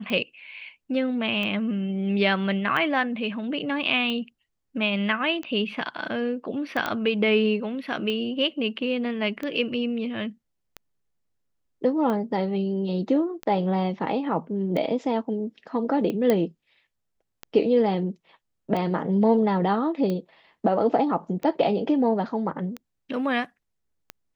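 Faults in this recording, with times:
tick 45 rpm -18 dBFS
6.86 s: pop -12 dBFS
16.30 s: pop -10 dBFS

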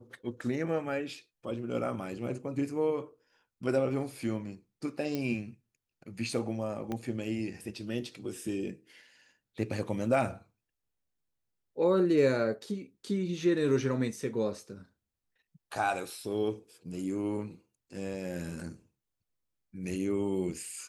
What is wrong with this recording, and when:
5.15 s: pop -20 dBFS
6.92 s: pop -22 dBFS

